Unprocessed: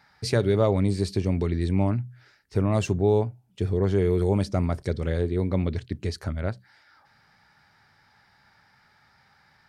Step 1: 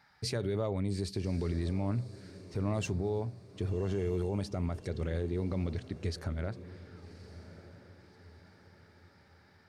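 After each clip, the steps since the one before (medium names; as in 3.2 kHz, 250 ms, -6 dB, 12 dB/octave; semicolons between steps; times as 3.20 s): peak limiter -18.5 dBFS, peak gain reduction 8.5 dB; echo that smears into a reverb 1151 ms, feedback 42%, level -15 dB; trim -5 dB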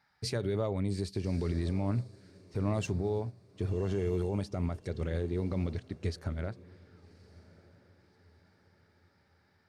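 upward expansion 1.5:1, over -48 dBFS; trim +2 dB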